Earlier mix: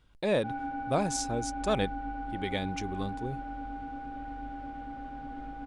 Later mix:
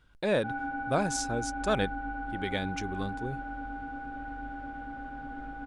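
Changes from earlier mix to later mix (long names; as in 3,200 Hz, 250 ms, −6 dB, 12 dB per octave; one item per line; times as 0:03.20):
background: add high-shelf EQ 4,600 Hz −6 dB
master: add parametric band 1,500 Hz +9 dB 0.27 octaves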